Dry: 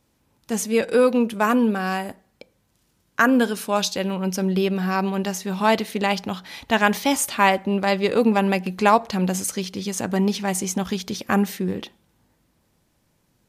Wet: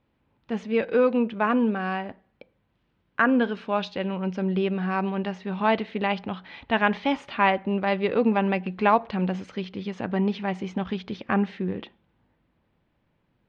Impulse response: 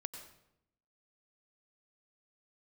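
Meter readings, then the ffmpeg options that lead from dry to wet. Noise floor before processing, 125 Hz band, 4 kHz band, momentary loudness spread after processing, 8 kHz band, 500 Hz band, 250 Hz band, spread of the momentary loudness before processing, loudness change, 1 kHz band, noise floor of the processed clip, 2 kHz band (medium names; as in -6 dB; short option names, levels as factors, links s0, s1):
-67 dBFS, -3.5 dB, -8.0 dB, 11 LU, under -30 dB, -3.5 dB, -3.5 dB, 9 LU, -4.0 dB, -3.5 dB, -71 dBFS, -3.5 dB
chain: -af "lowpass=f=3200:w=0.5412,lowpass=f=3200:w=1.3066,volume=0.668"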